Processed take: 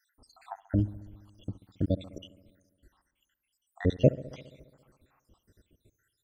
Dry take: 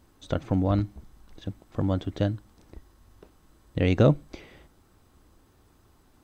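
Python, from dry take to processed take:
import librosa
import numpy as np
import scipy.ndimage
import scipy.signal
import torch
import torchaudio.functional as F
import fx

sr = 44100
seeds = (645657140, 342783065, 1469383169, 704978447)

y = fx.spec_dropout(x, sr, seeds[0], share_pct=83)
y = fx.echo_bbd(y, sr, ms=68, stages=1024, feedback_pct=73, wet_db=-19)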